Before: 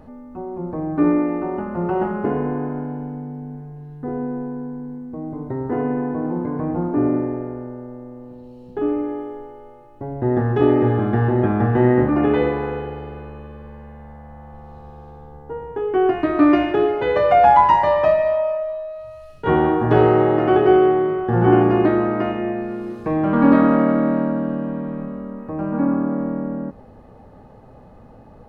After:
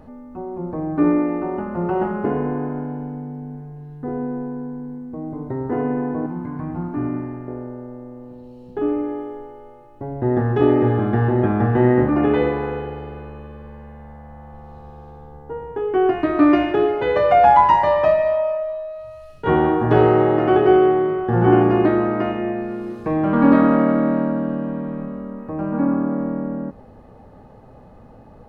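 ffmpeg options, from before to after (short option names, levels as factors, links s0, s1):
-filter_complex "[0:a]asettb=1/sr,asplit=3[s0][s1][s2];[s0]atrim=end=6.264[s3];[s1]atrim=start=6.26:end=7.48,asetpts=PTS-STARTPTS,afade=t=in:d=0.004:c=qsin,afade=t=out:st=1.216:d=0.004:c=qsin,equalizer=f=480:w=1.3:g=-14.5[s4];[s2]atrim=start=7.476[s5];[s3][s4]acrossfade=d=0.004:c1=hsin:c2=qsin[s6];[s6][s5]acrossfade=d=0.004:c1=qsin:c2=hsin"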